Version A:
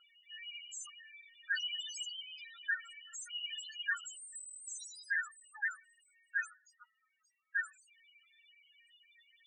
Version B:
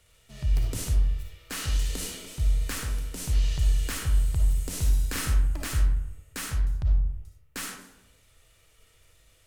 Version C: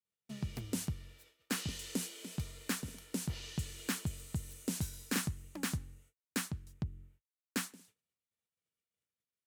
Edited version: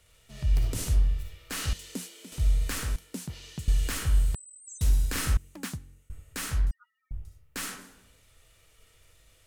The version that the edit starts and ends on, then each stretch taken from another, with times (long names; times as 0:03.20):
B
0:01.73–0:02.32: punch in from C
0:02.96–0:03.68: punch in from C
0:04.35–0:04.81: punch in from A
0:05.37–0:06.10: punch in from C
0:06.71–0:07.11: punch in from A